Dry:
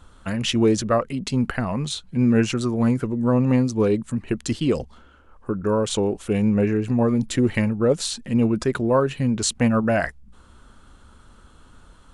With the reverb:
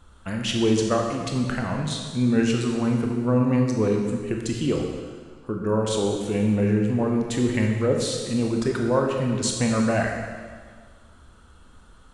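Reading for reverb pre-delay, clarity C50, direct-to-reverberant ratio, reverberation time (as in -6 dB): 18 ms, 3.0 dB, 1.0 dB, 1.7 s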